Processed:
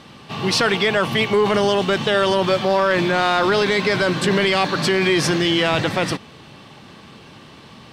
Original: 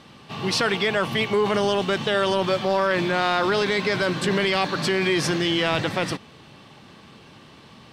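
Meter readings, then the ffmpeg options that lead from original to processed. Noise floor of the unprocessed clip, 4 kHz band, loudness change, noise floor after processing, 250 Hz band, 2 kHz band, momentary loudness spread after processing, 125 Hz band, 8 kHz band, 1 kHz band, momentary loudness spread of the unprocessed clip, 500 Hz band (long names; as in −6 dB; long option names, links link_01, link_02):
−48 dBFS, +4.0 dB, +4.0 dB, −44 dBFS, +4.5 dB, +4.0 dB, 4 LU, +4.5 dB, +4.5 dB, +4.0 dB, 4 LU, +4.5 dB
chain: -af "acontrast=73,volume=-2dB"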